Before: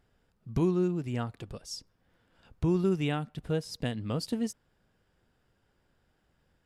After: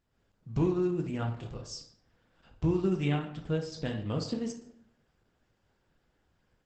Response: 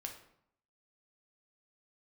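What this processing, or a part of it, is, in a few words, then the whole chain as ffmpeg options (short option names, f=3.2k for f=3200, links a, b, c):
speakerphone in a meeting room: -filter_complex "[0:a]asettb=1/sr,asplit=3[a][b][c];[a]atrim=end=1.194[d];[b]atrim=start=1.19:end=1.68,asetpts=PTS-STARTPTS,afade=t=in:d=0.004:c=qsin,afade=t=out:st=0.486:d=0.004:c=qsin,asplit=2[e][f];[f]adelay=27,volume=-5dB[g];[e][g]amix=inputs=2:normalize=0,atrim=end_sample=21609[h];[c]atrim=start=1.676[i];[d][h]acrossfade=d=0.004:c1=hsin:c2=qsin[j];[j][i]acrossfade=d=0.004:c1=qsin:c2=hsin[k];[1:a]atrim=start_sample=2205[l];[k][l]afir=irnorm=-1:irlink=0,dynaudnorm=f=100:g=3:m=7.5dB,volume=-5dB" -ar 48000 -c:a libopus -b:a 12k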